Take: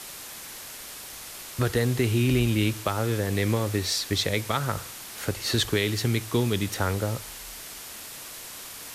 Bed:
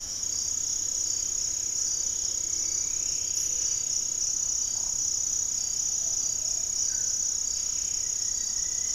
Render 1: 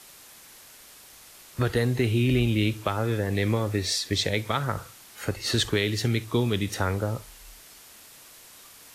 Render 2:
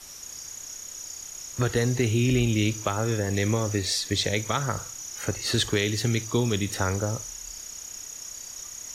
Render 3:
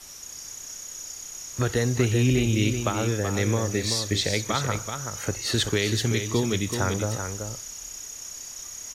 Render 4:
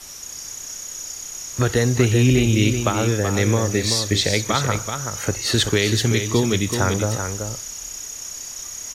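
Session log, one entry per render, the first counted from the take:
noise print and reduce 9 dB
add bed -10.5 dB
delay 381 ms -7 dB
trim +5.5 dB

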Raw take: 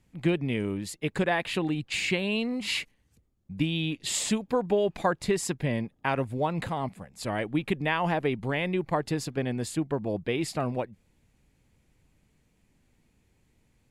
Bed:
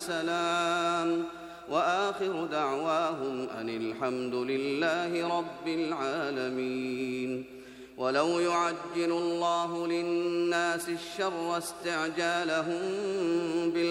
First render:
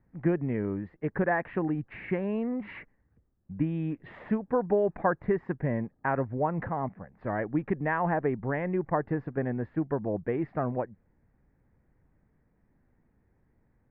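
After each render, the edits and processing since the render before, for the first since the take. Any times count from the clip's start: Chebyshev low-pass 1.8 kHz, order 4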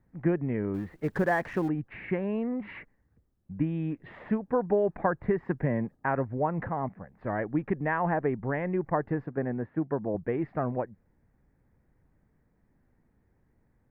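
0.74–1.69 s: companding laws mixed up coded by mu; 5.02–5.96 s: three bands compressed up and down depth 70%; 9.26–10.15 s: band-pass 110–2200 Hz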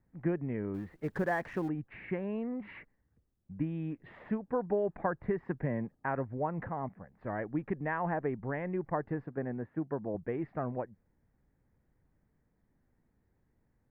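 trim -5.5 dB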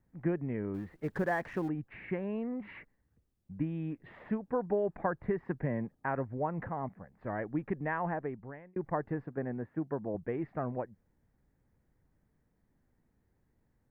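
7.98–8.76 s: fade out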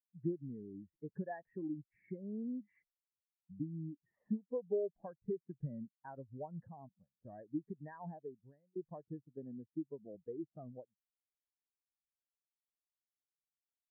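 compression 2:1, threshold -45 dBFS, peak gain reduction 10.5 dB; spectral contrast expander 2.5:1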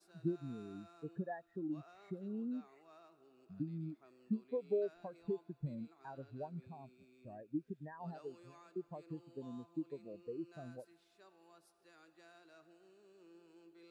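add bed -33 dB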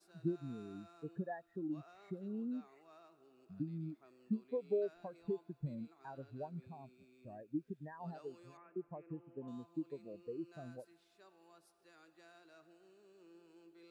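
8.57–9.48 s: steep low-pass 2.5 kHz 48 dB/octave

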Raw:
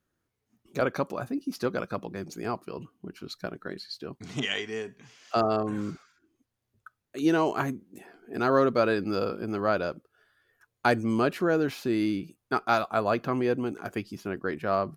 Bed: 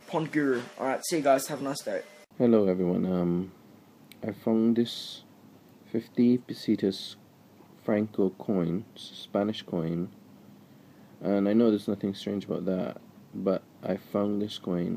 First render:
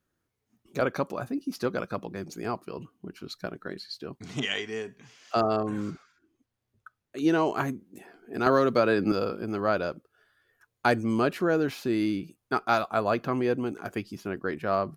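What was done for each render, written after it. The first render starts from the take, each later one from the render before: 5.89–7.52 s: treble shelf 5.6 kHz -> 8.2 kHz -6 dB; 8.46–9.12 s: three bands compressed up and down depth 100%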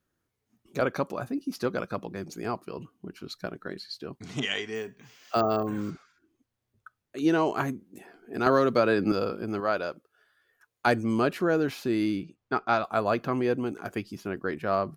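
4.75–5.90 s: careless resampling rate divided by 2×, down filtered, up hold; 9.60–10.87 s: bass shelf 250 Hz -10.5 dB; 12.23–12.84 s: distance through air 120 m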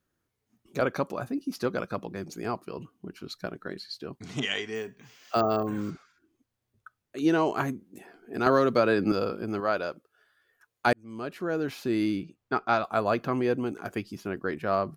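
10.93–11.97 s: fade in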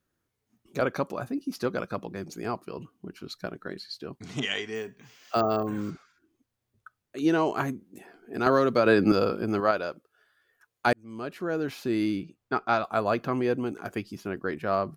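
8.86–9.71 s: gain +4 dB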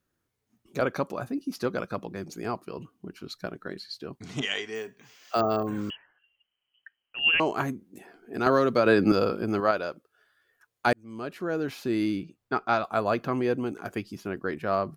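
4.41–5.39 s: tone controls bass -7 dB, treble +1 dB; 5.90–7.40 s: frequency inversion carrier 3.1 kHz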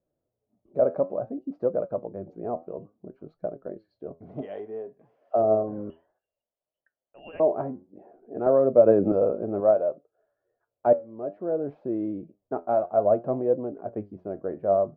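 resonant low-pass 610 Hz, resonance Q 4.9; flange 0.59 Hz, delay 5.7 ms, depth 6.9 ms, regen +74%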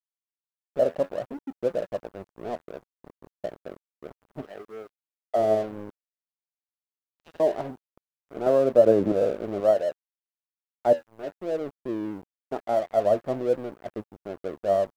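crossover distortion -39.5 dBFS; bit crusher 11-bit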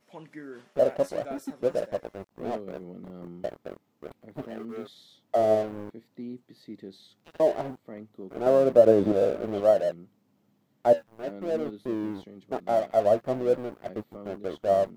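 add bed -16 dB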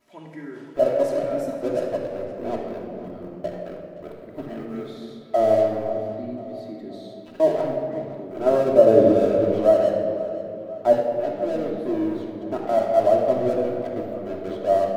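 tape echo 518 ms, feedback 57%, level -14 dB, low-pass 4.7 kHz; simulated room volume 3900 m³, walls mixed, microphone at 2.9 m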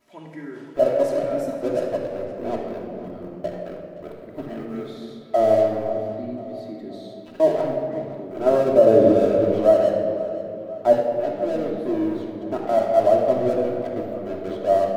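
trim +1 dB; peak limiter -3 dBFS, peak gain reduction 3 dB

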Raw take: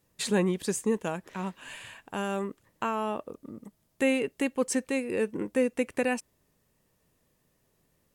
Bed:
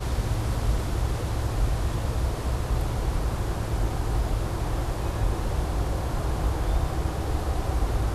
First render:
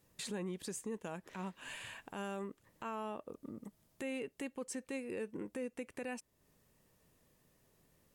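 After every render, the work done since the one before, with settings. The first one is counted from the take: compression 2:1, threshold -46 dBFS, peak gain reduction 14 dB; peak limiter -32.5 dBFS, peak gain reduction 8 dB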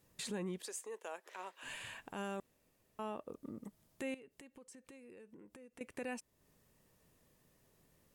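0.61–1.63 s: high-pass 430 Hz 24 dB/octave; 2.40–2.99 s: room tone; 4.14–5.81 s: compression 10:1, threshold -53 dBFS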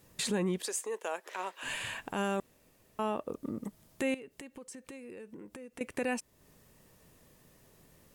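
trim +9.5 dB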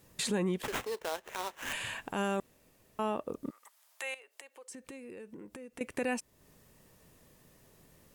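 0.63–1.73 s: sample-rate reducer 4.7 kHz, jitter 20%; 3.49–4.69 s: high-pass 1.1 kHz -> 450 Hz 24 dB/octave

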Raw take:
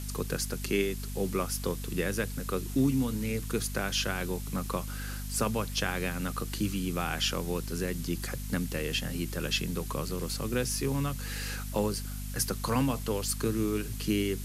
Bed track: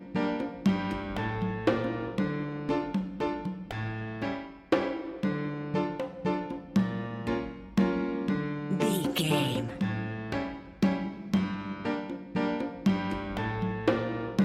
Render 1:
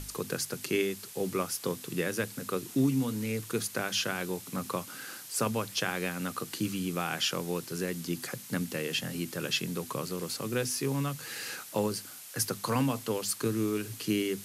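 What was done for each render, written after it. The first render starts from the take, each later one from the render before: hum notches 50/100/150/200/250 Hz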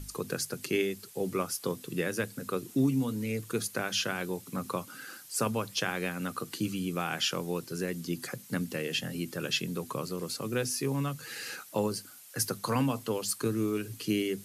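noise reduction 8 dB, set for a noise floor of -47 dBFS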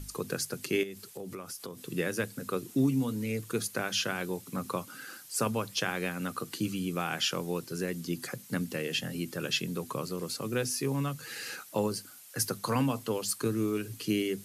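0.83–1.86 s: compression, threshold -37 dBFS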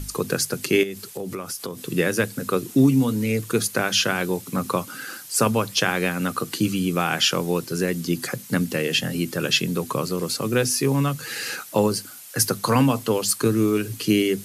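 trim +10 dB

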